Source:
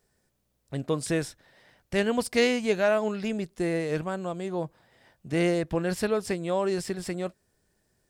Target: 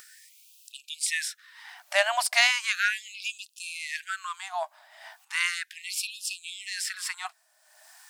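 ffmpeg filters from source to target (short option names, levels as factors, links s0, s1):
-af "acompressor=mode=upward:threshold=0.00794:ratio=2.5,afftfilt=real='re*gte(b*sr/1024,560*pow(2500/560,0.5+0.5*sin(2*PI*0.36*pts/sr)))':imag='im*gte(b*sr/1024,560*pow(2500/560,0.5+0.5*sin(2*PI*0.36*pts/sr)))':win_size=1024:overlap=0.75,volume=2.51"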